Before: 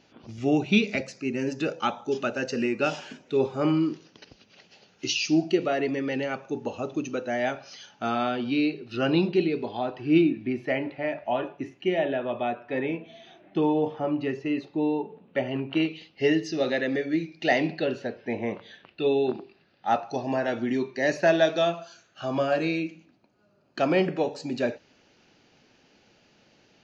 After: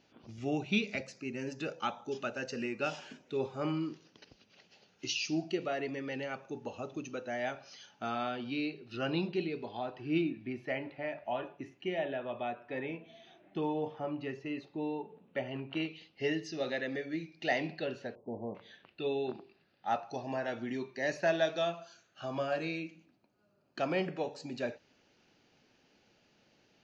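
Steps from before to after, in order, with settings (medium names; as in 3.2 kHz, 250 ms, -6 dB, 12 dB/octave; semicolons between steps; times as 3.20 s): 18.15–18.55 s: steep low-pass 1.1 kHz 72 dB/octave; dynamic bell 310 Hz, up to -4 dB, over -35 dBFS, Q 0.99; trim -7.5 dB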